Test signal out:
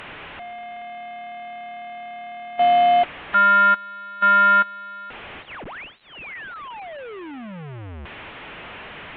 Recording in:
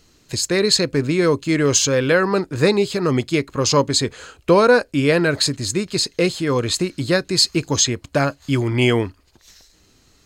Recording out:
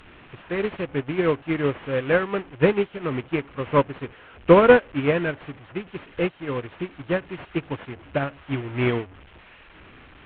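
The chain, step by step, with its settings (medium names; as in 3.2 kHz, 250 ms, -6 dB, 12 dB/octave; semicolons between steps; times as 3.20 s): one-bit delta coder 16 kbps, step -19 dBFS; Chebyshev shaper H 2 -30 dB, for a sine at -3.5 dBFS; upward expansion 2.5:1, over -34 dBFS; trim +2.5 dB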